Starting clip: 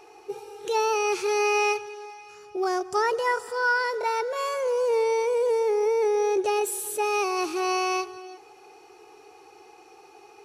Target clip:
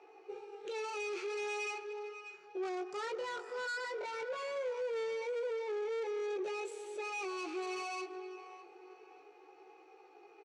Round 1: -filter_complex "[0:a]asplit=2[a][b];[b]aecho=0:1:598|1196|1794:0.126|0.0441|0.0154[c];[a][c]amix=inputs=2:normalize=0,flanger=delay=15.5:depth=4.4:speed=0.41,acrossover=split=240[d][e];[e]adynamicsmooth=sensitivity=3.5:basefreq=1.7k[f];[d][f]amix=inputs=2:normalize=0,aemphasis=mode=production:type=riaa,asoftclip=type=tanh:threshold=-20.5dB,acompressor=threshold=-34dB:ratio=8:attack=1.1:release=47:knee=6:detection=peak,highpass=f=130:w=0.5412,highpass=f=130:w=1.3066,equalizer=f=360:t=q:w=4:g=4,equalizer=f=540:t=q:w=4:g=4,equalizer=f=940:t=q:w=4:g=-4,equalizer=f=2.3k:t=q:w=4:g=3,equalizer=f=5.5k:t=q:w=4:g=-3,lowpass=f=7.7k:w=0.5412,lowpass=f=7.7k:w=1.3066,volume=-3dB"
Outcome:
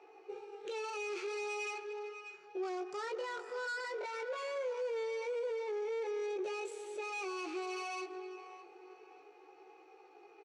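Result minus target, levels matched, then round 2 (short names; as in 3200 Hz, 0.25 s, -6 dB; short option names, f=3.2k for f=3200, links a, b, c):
soft clip: distortion -8 dB
-filter_complex "[0:a]asplit=2[a][b];[b]aecho=0:1:598|1196|1794:0.126|0.0441|0.0154[c];[a][c]amix=inputs=2:normalize=0,flanger=delay=15.5:depth=4.4:speed=0.41,acrossover=split=240[d][e];[e]adynamicsmooth=sensitivity=3.5:basefreq=1.7k[f];[d][f]amix=inputs=2:normalize=0,aemphasis=mode=production:type=riaa,asoftclip=type=tanh:threshold=-28.5dB,acompressor=threshold=-34dB:ratio=8:attack=1.1:release=47:knee=6:detection=peak,highpass=f=130:w=0.5412,highpass=f=130:w=1.3066,equalizer=f=360:t=q:w=4:g=4,equalizer=f=540:t=q:w=4:g=4,equalizer=f=940:t=q:w=4:g=-4,equalizer=f=2.3k:t=q:w=4:g=3,equalizer=f=5.5k:t=q:w=4:g=-3,lowpass=f=7.7k:w=0.5412,lowpass=f=7.7k:w=1.3066,volume=-3dB"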